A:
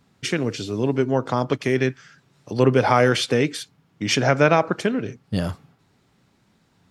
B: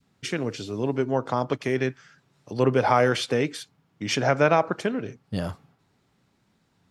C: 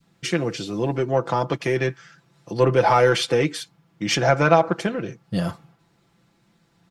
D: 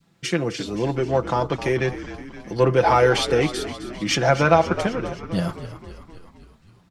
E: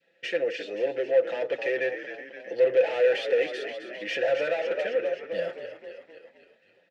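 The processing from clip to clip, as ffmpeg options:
-af "adynamicequalizer=threshold=0.0282:dfrequency=810:dqfactor=0.82:tfrequency=810:tqfactor=0.82:attack=5:release=100:ratio=0.375:range=2:mode=boostabove:tftype=bell,volume=0.531"
-filter_complex "[0:a]asplit=2[s0][s1];[s1]asoftclip=type=tanh:threshold=0.126,volume=0.668[s2];[s0][s2]amix=inputs=2:normalize=0,aecho=1:1:5.9:0.63,volume=0.891"
-filter_complex "[0:a]asplit=8[s0][s1][s2][s3][s4][s5][s6][s7];[s1]adelay=261,afreqshift=-58,volume=0.224[s8];[s2]adelay=522,afreqshift=-116,volume=0.141[s9];[s3]adelay=783,afreqshift=-174,volume=0.0891[s10];[s4]adelay=1044,afreqshift=-232,volume=0.0562[s11];[s5]adelay=1305,afreqshift=-290,volume=0.0351[s12];[s6]adelay=1566,afreqshift=-348,volume=0.0221[s13];[s7]adelay=1827,afreqshift=-406,volume=0.014[s14];[s0][s8][s9][s10][s11][s12][s13][s14]amix=inputs=8:normalize=0"
-filter_complex "[0:a]asplit=2[s0][s1];[s1]highpass=f=720:p=1,volume=22.4,asoftclip=type=tanh:threshold=0.841[s2];[s0][s2]amix=inputs=2:normalize=0,lowpass=f=5700:p=1,volume=0.501,asplit=3[s3][s4][s5];[s3]bandpass=f=530:t=q:w=8,volume=1[s6];[s4]bandpass=f=1840:t=q:w=8,volume=0.501[s7];[s5]bandpass=f=2480:t=q:w=8,volume=0.355[s8];[s6][s7][s8]amix=inputs=3:normalize=0,volume=0.447"

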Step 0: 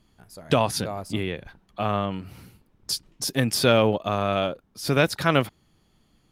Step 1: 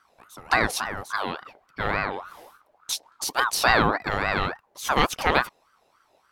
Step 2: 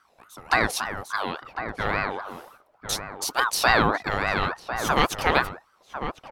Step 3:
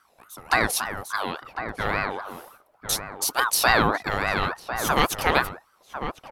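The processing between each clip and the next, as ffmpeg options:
-af "aeval=exprs='val(0)*sin(2*PI*980*n/s+980*0.4/3.5*sin(2*PI*3.5*n/s))':c=same,volume=1.26"
-filter_complex "[0:a]asplit=2[s0][s1];[s1]adelay=1050,volume=0.398,highshelf=f=4000:g=-23.6[s2];[s0][s2]amix=inputs=2:normalize=0"
-af "equalizer=f=12000:w=0.91:g=9"

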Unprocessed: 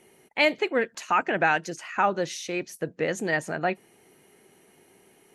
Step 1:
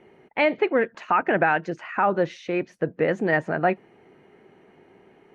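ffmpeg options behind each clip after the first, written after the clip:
-af "lowpass=1900,alimiter=limit=0.168:level=0:latency=1:release=76,volume=1.88"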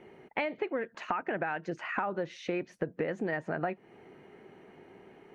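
-af "acompressor=threshold=0.0355:ratio=12"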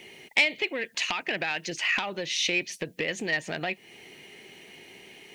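-af "asoftclip=type=tanh:threshold=0.0891,aexciter=amount=6:drive=9.1:freq=2100"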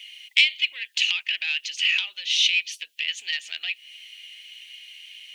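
-af "highpass=f=3000:t=q:w=3.6"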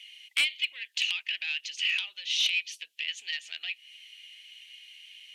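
-af "asoftclip=type=hard:threshold=0.251,volume=0.501" -ar 32000 -c:a libvorbis -b:a 128k

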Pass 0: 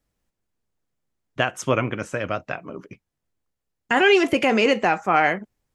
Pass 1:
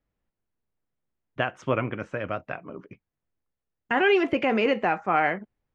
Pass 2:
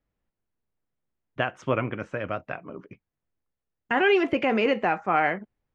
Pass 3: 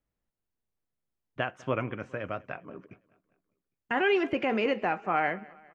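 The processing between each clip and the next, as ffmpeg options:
-af "lowpass=2700,volume=0.631"
-af anull
-af "aecho=1:1:202|404|606|808:0.0708|0.0375|0.0199|0.0105,volume=0.596"

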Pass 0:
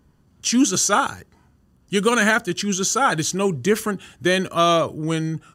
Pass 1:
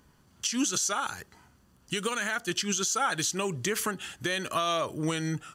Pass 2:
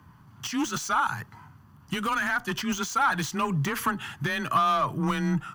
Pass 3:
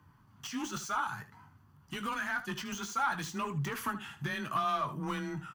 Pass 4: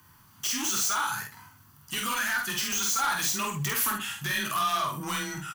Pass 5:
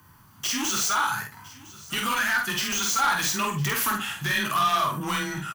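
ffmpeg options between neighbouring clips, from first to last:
-af "tiltshelf=f=640:g=-5.5,acompressor=threshold=0.0891:ratio=8,alimiter=limit=0.133:level=0:latency=1:release=217"
-af "aeval=exprs='0.133*sin(PI/2*1.58*val(0)/0.133)':c=same,afreqshift=21,equalizer=f=125:t=o:w=1:g=11,equalizer=f=500:t=o:w=1:g=-10,equalizer=f=1000:t=o:w=1:g=10,equalizer=f=4000:t=o:w=1:g=-4,equalizer=f=8000:t=o:w=1:g=-11,volume=0.631"
-filter_complex "[0:a]flanger=delay=2:depth=4.6:regen=-63:speed=0.55:shape=triangular,asplit=2[s0][s1];[s1]aecho=0:1:20|76:0.335|0.211[s2];[s0][s2]amix=inputs=2:normalize=0,volume=0.596"
-filter_complex "[0:a]crystalizer=i=8.5:c=0,asoftclip=type=tanh:threshold=0.0668,asplit=2[s0][s1];[s1]adelay=48,volume=0.708[s2];[s0][s2]amix=inputs=2:normalize=0"
-filter_complex "[0:a]asplit=2[s0][s1];[s1]adynamicsmooth=sensitivity=6.5:basefreq=2300,volume=0.75[s2];[s0][s2]amix=inputs=2:normalize=0,aecho=1:1:1008:0.1"

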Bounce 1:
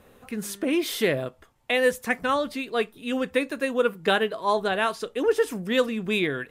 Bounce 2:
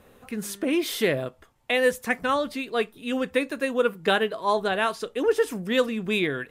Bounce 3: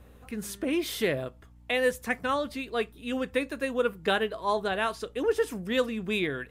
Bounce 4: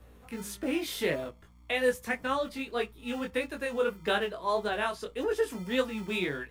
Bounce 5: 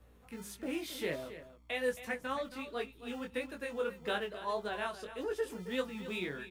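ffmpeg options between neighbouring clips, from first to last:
-af anull
-af "aeval=exprs='val(0)+0.00282*(sin(2*PI*60*n/s)+sin(2*PI*2*60*n/s)/2+sin(2*PI*3*60*n/s)/3+sin(2*PI*4*60*n/s)/4+sin(2*PI*5*60*n/s)/5)':c=same,equalizer=f=77:w=4.1:g=13,volume=0.631"
-filter_complex "[0:a]acrossover=split=210|1100[s0][s1][s2];[s0]acrusher=samples=40:mix=1:aa=0.000001[s3];[s3][s1][s2]amix=inputs=3:normalize=0,flanger=delay=18.5:depth=3.8:speed=1.7,volume=1.12"
-af "aecho=1:1:271:0.224,volume=0.447"

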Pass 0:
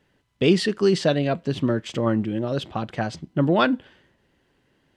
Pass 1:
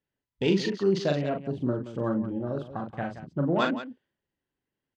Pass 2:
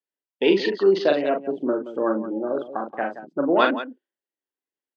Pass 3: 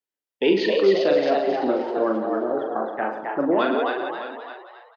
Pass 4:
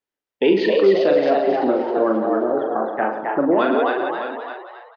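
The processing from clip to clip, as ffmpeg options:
-filter_complex "[0:a]afwtdn=0.0251,asplit=2[s0][s1];[s1]aecho=0:1:40.82|174.9:0.562|0.251[s2];[s0][s2]amix=inputs=2:normalize=0,volume=0.447"
-filter_complex "[0:a]acrossover=split=3900[s0][s1];[s1]acompressor=threshold=0.00447:ratio=4:attack=1:release=60[s2];[s0][s2]amix=inputs=2:normalize=0,afftdn=nr=17:nf=-49,highpass=f=290:w=0.5412,highpass=f=290:w=1.3066,volume=2.51"
-filter_complex "[0:a]asplit=2[s0][s1];[s1]aecho=0:1:106|608:0.251|0.133[s2];[s0][s2]amix=inputs=2:normalize=0,acrossover=split=410[s3][s4];[s4]acompressor=threshold=0.1:ratio=6[s5];[s3][s5]amix=inputs=2:normalize=0,asplit=2[s6][s7];[s7]asplit=5[s8][s9][s10][s11][s12];[s8]adelay=267,afreqshift=110,volume=0.631[s13];[s9]adelay=534,afreqshift=220,volume=0.234[s14];[s10]adelay=801,afreqshift=330,volume=0.0861[s15];[s11]adelay=1068,afreqshift=440,volume=0.032[s16];[s12]adelay=1335,afreqshift=550,volume=0.0119[s17];[s13][s14][s15][s16][s17]amix=inputs=5:normalize=0[s18];[s6][s18]amix=inputs=2:normalize=0"
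-filter_complex "[0:a]highshelf=f=4300:g=-11.5,asplit=2[s0][s1];[s1]alimiter=limit=0.126:level=0:latency=1:release=422,volume=1.12[s2];[s0][s2]amix=inputs=2:normalize=0"

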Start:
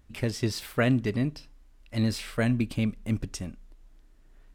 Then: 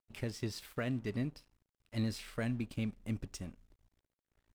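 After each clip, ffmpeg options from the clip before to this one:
-af "alimiter=limit=0.106:level=0:latency=1:release=316,aeval=exprs='sgn(val(0))*max(abs(val(0))-0.00282,0)':c=same,volume=0.447"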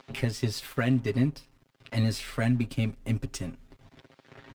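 -filter_complex "[0:a]acrossover=split=100|4800[s0][s1][s2];[s1]acompressor=mode=upward:threshold=0.01:ratio=2.5[s3];[s0][s3][s2]amix=inputs=3:normalize=0,aecho=1:1:7.5:0.82,volume=2.24"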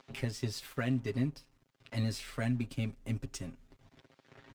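-af "equalizer=f=6600:t=o:w=0.77:g=2.5,volume=0.447"

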